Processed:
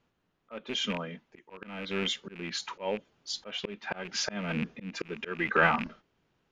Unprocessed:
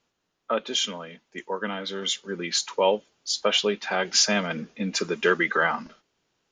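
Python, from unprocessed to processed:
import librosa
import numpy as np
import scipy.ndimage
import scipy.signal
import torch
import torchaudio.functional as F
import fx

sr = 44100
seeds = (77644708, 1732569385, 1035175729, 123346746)

y = fx.rattle_buzz(x, sr, strikes_db=-41.0, level_db=-20.0)
y = fx.bass_treble(y, sr, bass_db=7, treble_db=-13)
y = fx.auto_swell(y, sr, attack_ms=390.0)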